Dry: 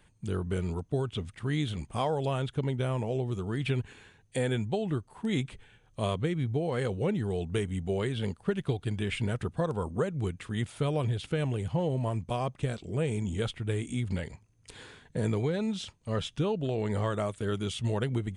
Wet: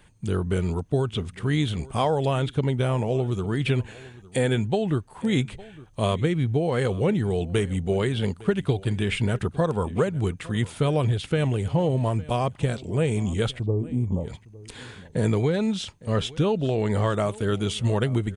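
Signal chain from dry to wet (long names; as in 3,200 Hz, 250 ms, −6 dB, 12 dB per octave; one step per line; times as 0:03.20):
0:13.59–0:14.28: linear-phase brick-wall low-pass 1,200 Hz
on a send: single-tap delay 858 ms −20.5 dB
on the sum: level +6.5 dB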